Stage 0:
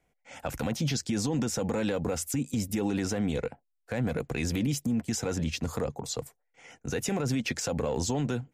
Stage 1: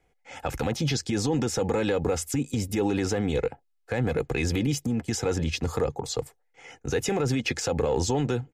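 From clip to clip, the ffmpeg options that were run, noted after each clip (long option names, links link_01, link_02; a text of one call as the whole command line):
ffmpeg -i in.wav -af "highshelf=frequency=8800:gain=-9,aecho=1:1:2.4:0.41,volume=4dB" out.wav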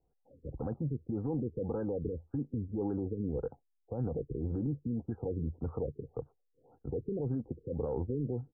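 ffmpeg -i in.wav -af "equalizer=frequency=1800:width_type=o:width=2.4:gain=-11,afftfilt=real='re*lt(b*sr/1024,470*pow(1700/470,0.5+0.5*sin(2*PI*1.8*pts/sr)))':imag='im*lt(b*sr/1024,470*pow(1700/470,0.5+0.5*sin(2*PI*1.8*pts/sr)))':win_size=1024:overlap=0.75,volume=-7dB" out.wav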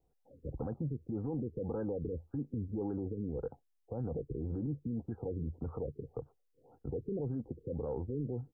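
ffmpeg -i in.wav -af "alimiter=level_in=6dB:limit=-24dB:level=0:latency=1:release=93,volume=-6dB,volume=1dB" out.wav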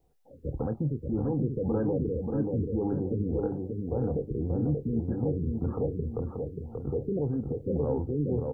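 ffmpeg -i in.wav -filter_complex "[0:a]asplit=2[link_01][link_02];[link_02]adelay=27,volume=-13dB[link_03];[link_01][link_03]amix=inputs=2:normalize=0,asplit=2[link_04][link_05];[link_05]adelay=583,lowpass=frequency=1400:poles=1,volume=-3.5dB,asplit=2[link_06][link_07];[link_07]adelay=583,lowpass=frequency=1400:poles=1,volume=0.43,asplit=2[link_08][link_09];[link_09]adelay=583,lowpass=frequency=1400:poles=1,volume=0.43,asplit=2[link_10][link_11];[link_11]adelay=583,lowpass=frequency=1400:poles=1,volume=0.43,asplit=2[link_12][link_13];[link_13]adelay=583,lowpass=frequency=1400:poles=1,volume=0.43[link_14];[link_06][link_08][link_10][link_12][link_14]amix=inputs=5:normalize=0[link_15];[link_04][link_15]amix=inputs=2:normalize=0,volume=7dB" out.wav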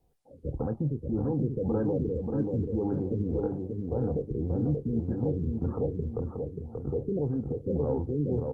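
ffmpeg -i in.wav -ar 48000 -c:a libopus -b:a 32k out.opus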